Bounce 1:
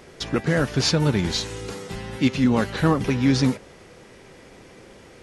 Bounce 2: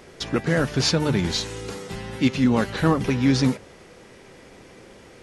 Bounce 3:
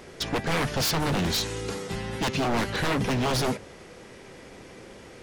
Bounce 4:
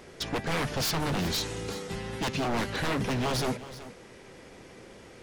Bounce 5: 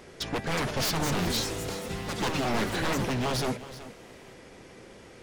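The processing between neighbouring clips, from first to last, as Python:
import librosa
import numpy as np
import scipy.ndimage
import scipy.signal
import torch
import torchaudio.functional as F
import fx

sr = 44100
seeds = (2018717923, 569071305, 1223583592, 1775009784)

y1 = fx.hum_notches(x, sr, base_hz=50, count=3)
y2 = 10.0 ** (-21.0 / 20.0) * (np.abs((y1 / 10.0 ** (-21.0 / 20.0) + 3.0) % 4.0 - 2.0) - 1.0)
y2 = F.gain(torch.from_numpy(y2), 1.0).numpy()
y3 = y2 + 10.0 ** (-15.5 / 20.0) * np.pad(y2, (int(375 * sr / 1000.0), 0))[:len(y2)]
y3 = F.gain(torch.from_numpy(y3), -3.5).numpy()
y4 = fx.echo_pitch(y3, sr, ms=420, semitones=5, count=3, db_per_echo=-6.0)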